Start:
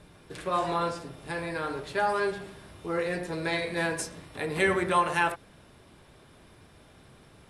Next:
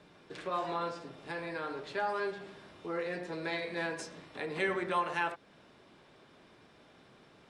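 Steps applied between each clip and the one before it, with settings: three-band isolator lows -15 dB, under 160 Hz, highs -23 dB, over 7.1 kHz; in parallel at -0.5 dB: compression, threshold -37 dBFS, peak gain reduction 16.5 dB; on the sum: trim -8.5 dB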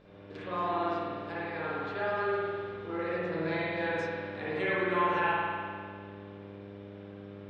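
low-pass 4.3 kHz 12 dB/octave; mains buzz 50 Hz, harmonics 12, -57 dBFS 0 dB/octave; spring tank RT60 1.9 s, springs 50 ms, chirp 70 ms, DRR -7.5 dB; trim -4 dB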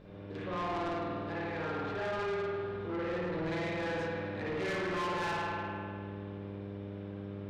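bass shelf 360 Hz +7.5 dB; saturation -31.5 dBFS, distortion -8 dB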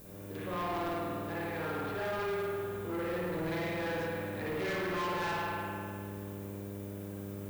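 added noise violet -56 dBFS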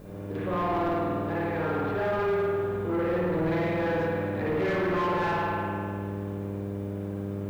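low-pass 1.3 kHz 6 dB/octave; trim +9 dB

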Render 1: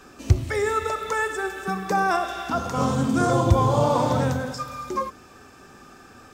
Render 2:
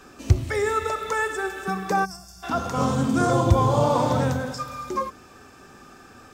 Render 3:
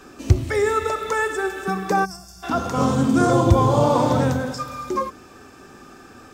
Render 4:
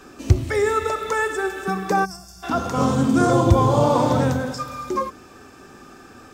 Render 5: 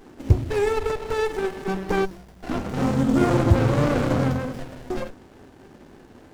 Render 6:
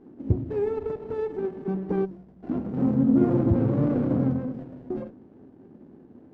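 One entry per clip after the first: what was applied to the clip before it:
time-frequency box 2.05–2.43 s, 210–4300 Hz -26 dB
peaking EQ 320 Hz +4 dB 0.93 oct; trim +2 dB
no audible change
sliding maximum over 33 samples; trim -1 dB
band-pass filter 230 Hz, Q 1.2; trim +1.5 dB

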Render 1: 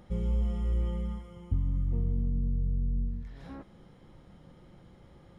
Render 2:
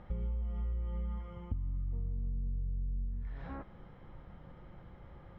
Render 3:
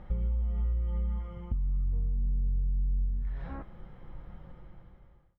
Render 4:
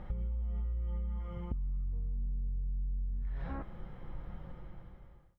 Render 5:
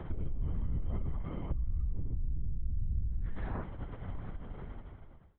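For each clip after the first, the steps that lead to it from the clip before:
low-pass 1.8 kHz 12 dB/octave; peaking EQ 270 Hz -9 dB 2.5 oct; compression 16:1, threshold -39 dBFS, peak gain reduction 14.5 dB; trim +6.5 dB
fade out at the end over 1.01 s; flange 1.8 Hz, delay 5.2 ms, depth 1.1 ms, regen -63%; bass shelf 69 Hz +8 dB; trim +5.5 dB
compression, threshold -35 dBFS, peak gain reduction 10 dB; trim +2 dB
LPC vocoder at 8 kHz whisper; trim +2.5 dB

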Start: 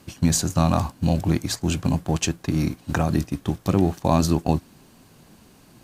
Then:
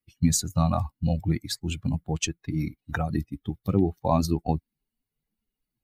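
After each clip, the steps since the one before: expander on every frequency bin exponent 2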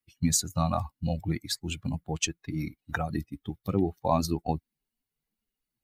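bass shelf 340 Hz -6 dB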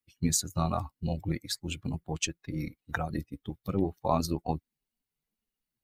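AM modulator 200 Hz, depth 30%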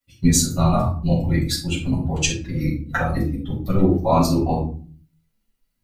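simulated room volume 290 m³, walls furnished, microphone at 6.7 m

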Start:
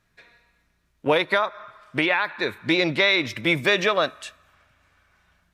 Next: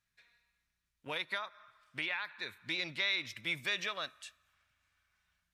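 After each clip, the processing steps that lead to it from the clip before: amplifier tone stack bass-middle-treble 5-5-5; trim -4 dB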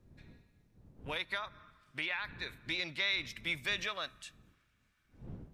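wind noise 170 Hz -56 dBFS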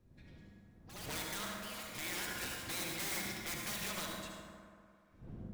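integer overflow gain 32 dB; ever faster or slower copies 140 ms, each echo +5 st, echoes 2, each echo -6 dB; reverberation RT60 2.3 s, pre-delay 64 ms, DRR -1 dB; trim -3.5 dB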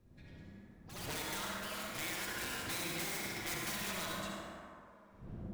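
peak limiter -33 dBFS, peak gain reduction 6 dB; on a send: tape echo 60 ms, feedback 85%, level -4 dB, low-pass 3 kHz; on the sum: trim +1.5 dB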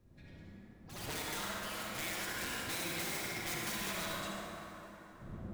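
plate-style reverb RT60 4.7 s, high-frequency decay 0.55×, DRR 6 dB

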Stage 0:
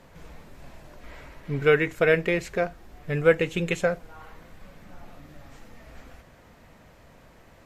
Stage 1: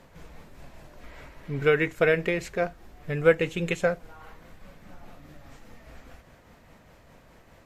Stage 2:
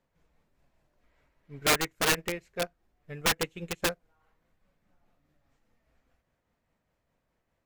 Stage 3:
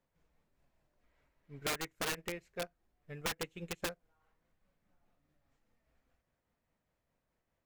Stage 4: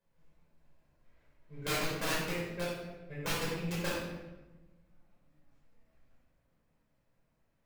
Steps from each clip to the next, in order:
tremolo 4.9 Hz, depth 31%
integer overflow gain 16.5 dB; upward expansion 2.5:1, over -36 dBFS
compression 4:1, threshold -29 dBFS, peak gain reduction 8 dB; trim -5.5 dB
reverberation RT60 1.1 s, pre-delay 9 ms, DRR -8 dB; trim -7 dB

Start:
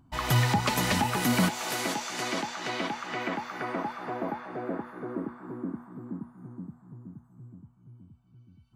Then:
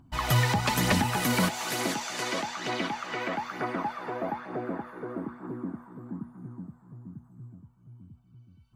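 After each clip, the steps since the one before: phaser 1.1 Hz, delay 2.3 ms, feedback 36%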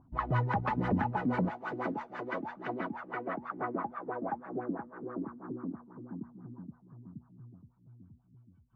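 LFO low-pass sine 6.1 Hz 260–1600 Hz; trim -6.5 dB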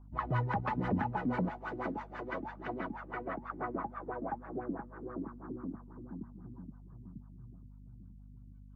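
hum 50 Hz, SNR 14 dB; trim -2.5 dB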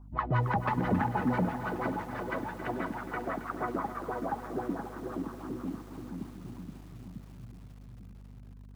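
bit-crushed delay 271 ms, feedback 80%, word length 9-bit, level -11.5 dB; trim +4 dB

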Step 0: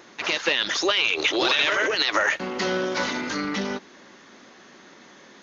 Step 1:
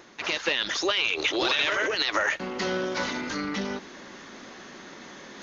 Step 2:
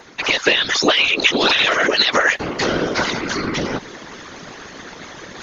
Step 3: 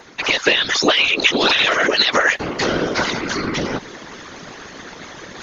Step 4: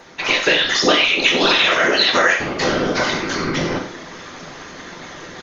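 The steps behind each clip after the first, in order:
bass shelf 65 Hz +11 dB; reverse; upward compressor, threshold -31 dBFS; reverse; trim -3.5 dB
whisper effect; harmonic-percussive split percussive +8 dB; short-mantissa float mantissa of 8-bit; trim +3.5 dB
no audible change
delay 93 ms -10.5 dB; on a send at -1 dB: reverberation, pre-delay 5 ms; on the sum: trim -2 dB

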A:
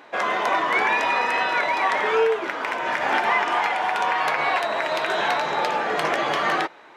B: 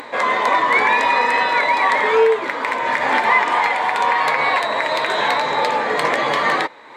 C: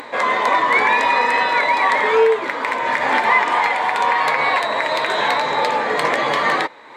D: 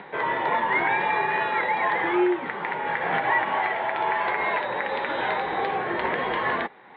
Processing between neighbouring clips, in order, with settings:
upward compressor, threshold -32 dBFS; rippled EQ curve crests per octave 1, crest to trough 7 dB; trim +4 dB
no audible change
mistuned SSB -90 Hz 170–3400 Hz; trim -7.5 dB

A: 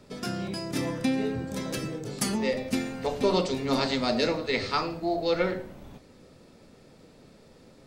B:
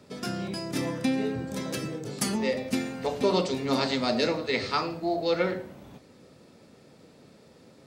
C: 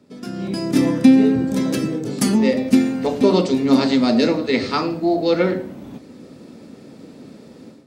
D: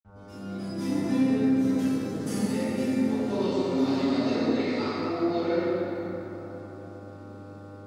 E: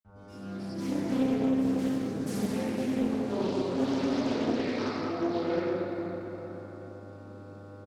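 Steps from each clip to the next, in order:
high-pass 86 Hz
level rider gain up to 13.5 dB; peaking EQ 260 Hz +10.5 dB 1.1 oct; trim -6 dB
mains buzz 100 Hz, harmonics 15, -32 dBFS -6 dB/octave; reverberation RT60 3.7 s, pre-delay 46 ms
echo from a far wall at 130 m, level -13 dB; loudspeaker Doppler distortion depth 0.49 ms; trim -3 dB

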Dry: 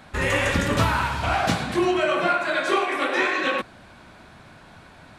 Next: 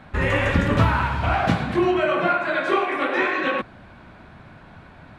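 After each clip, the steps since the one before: tone controls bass +4 dB, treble -14 dB; trim +1 dB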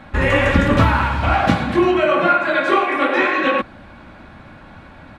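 comb 3.6 ms, depth 32%; trim +4.5 dB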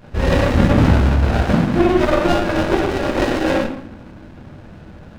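reverberation RT60 0.70 s, pre-delay 8 ms, DRR -3 dB; sliding maximum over 33 samples; trim -4.5 dB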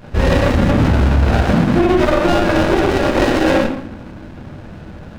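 peak limiter -10.5 dBFS, peak gain reduction 9 dB; trim +5 dB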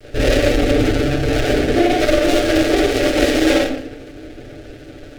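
comb filter that takes the minimum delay 6.8 ms; static phaser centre 410 Hz, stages 4; trim +4 dB

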